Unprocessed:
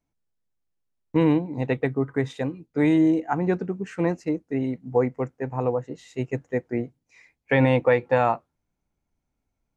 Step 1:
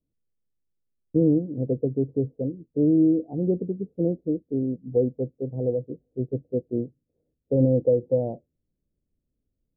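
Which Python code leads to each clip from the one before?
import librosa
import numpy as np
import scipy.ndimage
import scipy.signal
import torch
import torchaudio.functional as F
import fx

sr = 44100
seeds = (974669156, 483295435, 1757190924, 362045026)

y = scipy.signal.sosfilt(scipy.signal.butter(8, 570.0, 'lowpass', fs=sr, output='sos'), x)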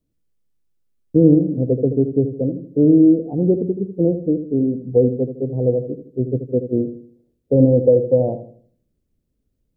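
y = fx.echo_filtered(x, sr, ms=79, feedback_pct=44, hz=810.0, wet_db=-9.0)
y = y * 10.0 ** (7.0 / 20.0)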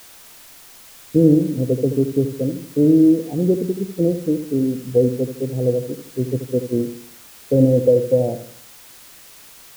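y = fx.dmg_noise_colour(x, sr, seeds[0], colour='white', level_db=-43.0)
y = y * 10.0 ** (-1.0 / 20.0)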